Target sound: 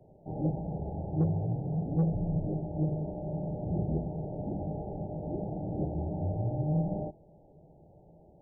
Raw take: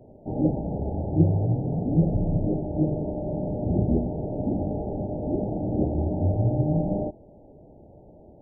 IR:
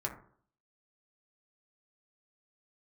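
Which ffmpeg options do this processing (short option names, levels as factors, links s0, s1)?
-filter_complex "[0:a]equalizer=f=160:t=o:w=0.33:g=9,equalizer=f=250:t=o:w=0.33:g=-7,equalizer=f=800:t=o:w=0.33:g=4,acrossover=split=280[s0][s1];[s0]asoftclip=type=tanh:threshold=0.168[s2];[s2][s1]amix=inputs=2:normalize=0,volume=0.376"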